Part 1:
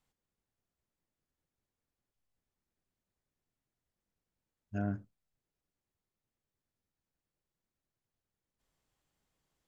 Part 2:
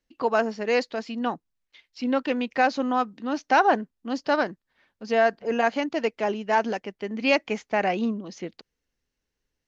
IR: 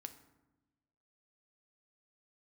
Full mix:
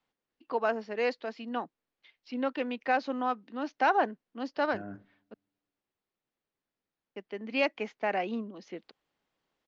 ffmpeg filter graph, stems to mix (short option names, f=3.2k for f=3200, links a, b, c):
-filter_complex "[0:a]alimiter=level_in=8dB:limit=-24dB:level=0:latency=1:release=111,volume=-8dB,volume=2.5dB,asplit=2[a][b];[b]volume=-12dB[c];[1:a]adelay=300,volume=-6dB,asplit=3[d][e][f];[d]atrim=end=5.34,asetpts=PTS-STARTPTS,afade=t=out:st=5.336:d=0.004:c=hsin[g];[e]atrim=start=5.34:end=7.16,asetpts=PTS-STARTPTS,volume=0[h];[f]atrim=start=7.16,asetpts=PTS-STARTPTS,afade=t=in:d=0.004:c=hsin[i];[g][h][i]concat=n=3:v=0:a=1[j];[2:a]atrim=start_sample=2205[k];[c][k]afir=irnorm=-1:irlink=0[l];[a][j][l]amix=inputs=3:normalize=0,acrossover=split=200 4900:gain=0.2 1 0.1[m][n][o];[m][n][o]amix=inputs=3:normalize=0"